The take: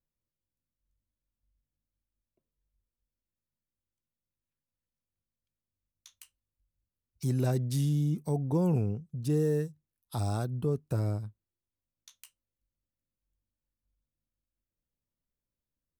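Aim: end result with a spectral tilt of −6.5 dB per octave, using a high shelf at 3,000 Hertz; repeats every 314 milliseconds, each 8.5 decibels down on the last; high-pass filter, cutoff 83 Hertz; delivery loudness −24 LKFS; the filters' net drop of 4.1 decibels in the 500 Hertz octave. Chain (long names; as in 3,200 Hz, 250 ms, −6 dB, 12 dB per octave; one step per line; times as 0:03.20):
high-pass filter 83 Hz
parametric band 500 Hz −5 dB
high-shelf EQ 3,000 Hz +5 dB
repeating echo 314 ms, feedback 38%, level −8.5 dB
level +7.5 dB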